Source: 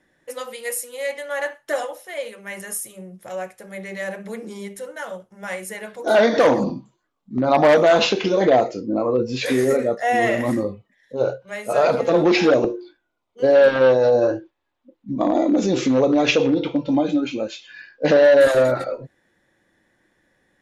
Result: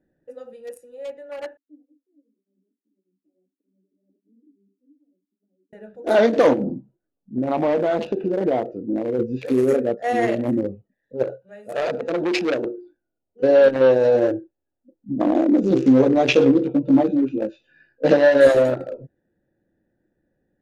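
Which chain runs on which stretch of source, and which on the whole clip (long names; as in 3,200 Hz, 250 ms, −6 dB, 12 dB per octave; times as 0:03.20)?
0:01.57–0:05.73: flat-topped band-pass 280 Hz, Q 6.9 + through-zero flanger with one copy inverted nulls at 1.7 Hz, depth 5.3 ms
0:06.53–0:09.19: low-pass filter 2,500 Hz 6 dB per octave + downward compressor 1.5 to 1, threshold −22 dBFS + highs frequency-modulated by the lows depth 0.17 ms
0:11.23–0:12.78: spectral tilt +2 dB per octave + notch filter 5,600 Hz, Q 10 + saturating transformer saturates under 1,700 Hz
0:15.69–0:18.57: low-pass filter 9,800 Hz + double-tracking delay 15 ms −2.5 dB
whole clip: adaptive Wiener filter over 41 samples; dynamic equaliser 340 Hz, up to +5 dB, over −31 dBFS, Q 1; level −2 dB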